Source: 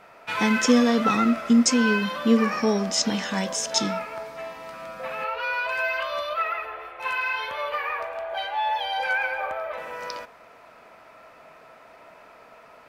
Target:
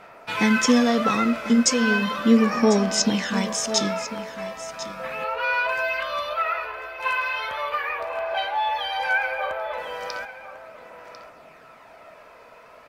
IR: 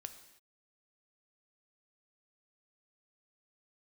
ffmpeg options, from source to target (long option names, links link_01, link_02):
-af "aphaser=in_gain=1:out_gain=1:delay=2:decay=0.31:speed=0.36:type=sinusoidal,aecho=1:1:1047:0.211,volume=1dB"